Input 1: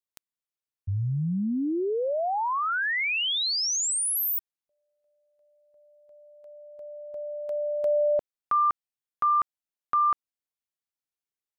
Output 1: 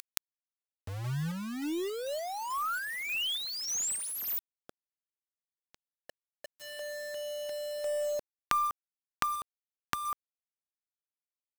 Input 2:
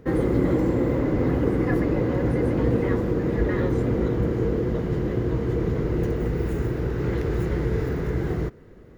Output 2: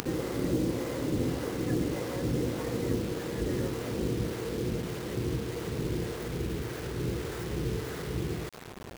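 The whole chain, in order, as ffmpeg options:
ffmpeg -i in.wav -filter_complex "[0:a]acrossover=split=520[link_01][link_02];[link_01]aeval=exprs='val(0)*(1-0.7/2+0.7/2*cos(2*PI*1.7*n/s))':channel_layout=same[link_03];[link_02]aeval=exprs='val(0)*(1-0.7/2-0.7/2*cos(2*PI*1.7*n/s))':channel_layout=same[link_04];[link_03][link_04]amix=inputs=2:normalize=0,asplit=2[link_05][link_06];[link_06]acompressor=mode=upward:threshold=-30dB:ratio=4:attack=25:release=48:knee=2.83:detection=peak,volume=1.5dB[link_07];[link_05][link_07]amix=inputs=2:normalize=0,highpass=68,acrusher=bits=4:mix=0:aa=0.000001,aeval=exprs='3.16*(cos(1*acos(clip(val(0)/3.16,-1,1)))-cos(1*PI/2))+0.141*(cos(6*acos(clip(val(0)/3.16,-1,1)))-cos(6*PI/2))':channel_layout=same,volume=-12dB" out.wav

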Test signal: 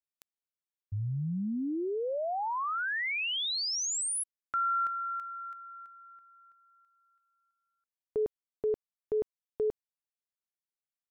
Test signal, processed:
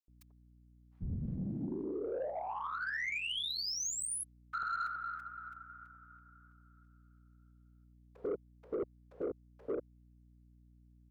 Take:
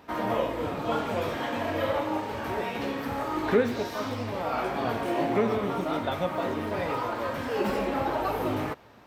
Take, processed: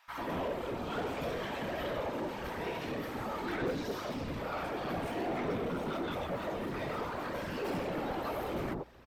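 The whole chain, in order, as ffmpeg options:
ffmpeg -i in.wav -filter_complex "[0:a]afftfilt=real='hypot(re,im)*cos(2*PI*random(0))':imag='hypot(re,im)*sin(2*PI*random(1))':win_size=512:overlap=0.75,aeval=exprs='val(0)+0.000708*(sin(2*PI*60*n/s)+sin(2*PI*2*60*n/s)/2+sin(2*PI*3*60*n/s)/3+sin(2*PI*4*60*n/s)/4+sin(2*PI*5*60*n/s)/5)':channel_layout=same,acrossover=split=970[link_01][link_02];[link_01]adelay=90[link_03];[link_03][link_02]amix=inputs=2:normalize=0,asoftclip=type=tanh:threshold=-31.5dB,volume=2dB" out.wav

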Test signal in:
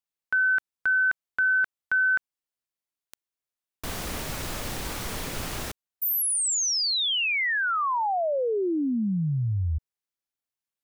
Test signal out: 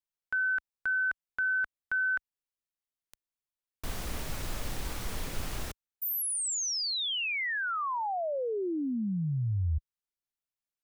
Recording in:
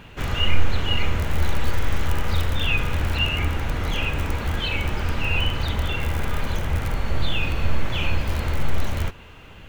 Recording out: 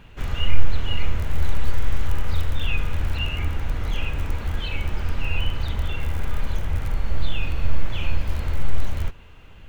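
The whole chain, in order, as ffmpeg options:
ffmpeg -i in.wav -af "lowshelf=frequency=63:gain=11,volume=-6.5dB" out.wav

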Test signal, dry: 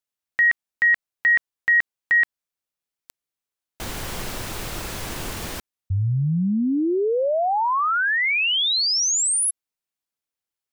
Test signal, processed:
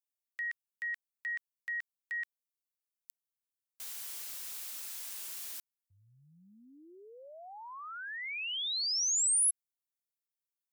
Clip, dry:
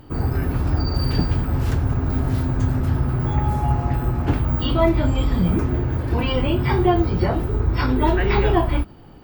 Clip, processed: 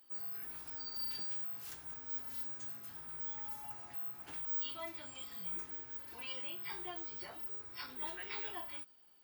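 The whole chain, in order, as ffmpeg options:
ffmpeg -i in.wav -af "aderivative,volume=-8dB" out.wav

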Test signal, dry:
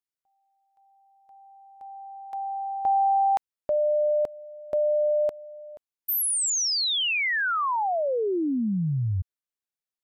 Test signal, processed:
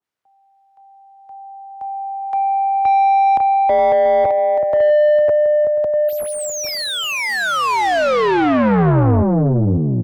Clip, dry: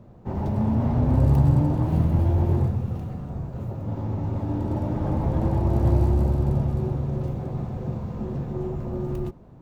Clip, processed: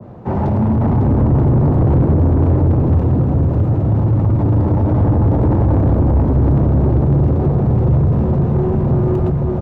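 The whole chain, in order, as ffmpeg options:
ffmpeg -i in.wav -filter_complex "[0:a]acrossover=split=140|350|610[link_01][link_02][link_03][link_04];[link_01]dynaudnorm=framelen=100:gausssize=17:maxgain=9.5dB[link_05];[link_05][link_02][link_03][link_04]amix=inputs=4:normalize=0,equalizer=frequency=87:width_type=o:width=2.8:gain=10,acompressor=threshold=-9dB:ratio=6:attack=99:release=32:knee=6,asoftclip=type=tanh:threshold=-10dB,aecho=1:1:550|935|1204|1393|1525:0.631|0.398|0.251|0.158|0.1,asoftclip=type=hard:threshold=-5dB,asplit=2[link_06][link_07];[link_07]highpass=frequency=720:poles=1,volume=24dB,asoftclip=type=tanh:threshold=-5dB[link_08];[link_06][link_08]amix=inputs=2:normalize=0,lowpass=frequency=1300:poles=1,volume=-6dB,adynamicequalizer=threshold=0.0447:dfrequency=1500:dqfactor=0.7:tfrequency=1500:tqfactor=0.7:attack=5:release=100:ratio=0.375:range=2:mode=cutabove:tftype=highshelf" out.wav

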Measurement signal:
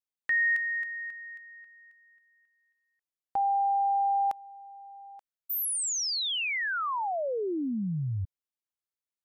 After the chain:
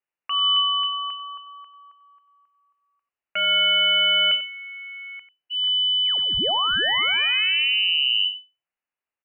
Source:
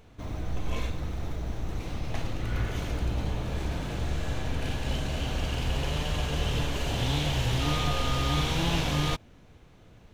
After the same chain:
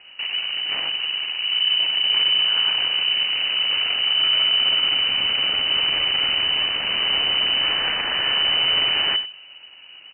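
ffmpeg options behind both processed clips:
ffmpeg -i in.wav -filter_complex "[0:a]aeval=exprs='0.224*(cos(1*acos(clip(val(0)/0.224,-1,1)))-cos(1*PI/2))+0.0562*(cos(8*acos(clip(val(0)/0.224,-1,1)))-cos(8*PI/2))':channel_layout=same,aresample=11025,asoftclip=type=tanh:threshold=-25dB,aresample=44100,asplit=2[link_01][link_02];[link_02]adelay=93.29,volume=-14dB,highshelf=frequency=4000:gain=-2.1[link_03];[link_01][link_03]amix=inputs=2:normalize=0,lowpass=frequency=2600:width_type=q:width=0.5098,lowpass=frequency=2600:width_type=q:width=0.6013,lowpass=frequency=2600:width_type=q:width=0.9,lowpass=frequency=2600:width_type=q:width=2.563,afreqshift=-3000,volume=9dB" out.wav

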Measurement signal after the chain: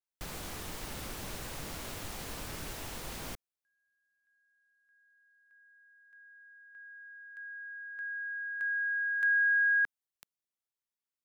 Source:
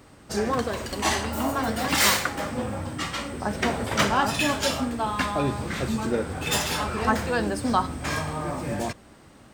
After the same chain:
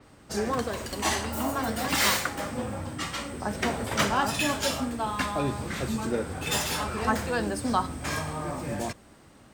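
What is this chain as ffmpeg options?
ffmpeg -i in.wav -filter_complex "[0:a]acrossover=split=370|5300[link_01][link_02][link_03];[link_03]volume=29.5dB,asoftclip=hard,volume=-29.5dB[link_04];[link_01][link_02][link_04]amix=inputs=3:normalize=0,adynamicequalizer=threshold=0.00708:dfrequency=6200:dqfactor=0.7:tfrequency=6200:tqfactor=0.7:attack=5:release=100:ratio=0.375:range=2:mode=boostabove:tftype=highshelf,volume=-3dB" out.wav

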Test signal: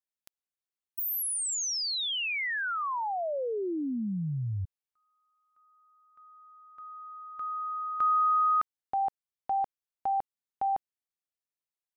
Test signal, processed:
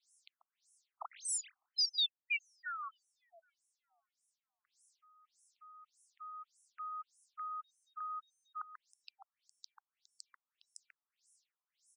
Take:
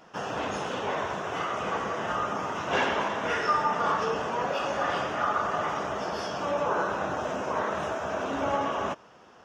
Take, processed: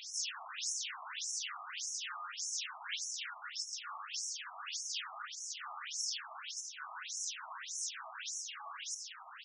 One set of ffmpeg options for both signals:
ffmpeg -i in.wav -filter_complex "[0:a]areverse,acompressor=threshold=-42dB:ratio=8:attack=6:release=39:knee=1:detection=peak,areverse,aderivative,asoftclip=type=tanh:threshold=-30.5dB,highshelf=frequency=6200:gain=9.5,asplit=2[link_01][link_02];[link_02]aecho=0:1:139:0.188[link_03];[link_01][link_03]amix=inputs=2:normalize=0,aeval=exprs='0.0944*sin(PI/2*6.31*val(0)/0.0944)':channel_layout=same,acrossover=split=720|2100[link_04][link_05][link_06];[link_04]acompressor=threshold=-58dB:ratio=4[link_07];[link_05]acompressor=threshold=-50dB:ratio=4[link_08];[link_06]acompressor=threshold=-33dB:ratio=4[link_09];[link_07][link_08][link_09]amix=inputs=3:normalize=0,afftfilt=real='re*between(b*sr/1024,900*pow(7700/900,0.5+0.5*sin(2*PI*1.7*pts/sr))/1.41,900*pow(7700/900,0.5+0.5*sin(2*PI*1.7*pts/sr))*1.41)':imag='im*between(b*sr/1024,900*pow(7700/900,0.5+0.5*sin(2*PI*1.7*pts/sr))/1.41,900*pow(7700/900,0.5+0.5*sin(2*PI*1.7*pts/sr))*1.41)':win_size=1024:overlap=0.75,volume=3dB" out.wav

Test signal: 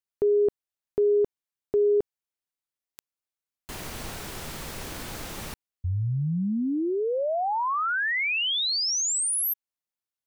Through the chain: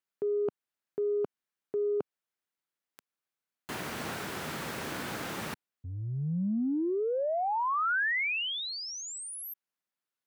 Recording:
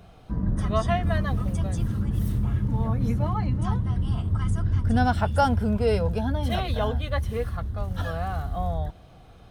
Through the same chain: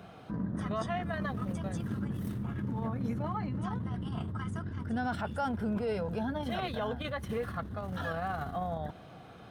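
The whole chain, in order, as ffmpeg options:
ffmpeg -i in.wav -filter_complex "[0:a]areverse,acompressor=threshold=-32dB:ratio=6:attack=6.4:release=34:knee=1:detection=peak,areverse,highpass=180,equalizer=frequency=1500:width_type=o:width=0.71:gain=3.5,asplit=2[link_01][link_02];[link_02]alimiter=level_in=4.5dB:limit=-24dB:level=0:latency=1:release=151,volume=-4.5dB,volume=0dB[link_03];[link_01][link_03]amix=inputs=2:normalize=0,acrossover=split=2500[link_04][link_05];[link_05]acompressor=threshold=-31dB:ratio=4:attack=1:release=60[link_06];[link_04][link_06]amix=inputs=2:normalize=0,bass=frequency=250:gain=4,treble=frequency=4000:gain=-5,volume=-4dB" out.wav

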